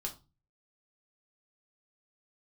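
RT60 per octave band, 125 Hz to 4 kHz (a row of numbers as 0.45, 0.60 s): 0.60, 0.45, 0.30, 0.30, 0.20, 0.25 s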